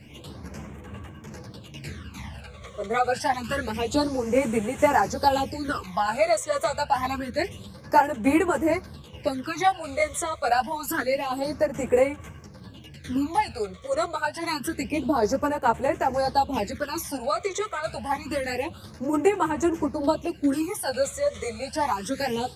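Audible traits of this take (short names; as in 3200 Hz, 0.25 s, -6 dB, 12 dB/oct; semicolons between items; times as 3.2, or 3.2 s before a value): a quantiser's noise floor 12-bit, dither none; phasing stages 12, 0.27 Hz, lowest notch 270–4700 Hz; tremolo saw down 2.3 Hz, depth 40%; a shimmering, thickened sound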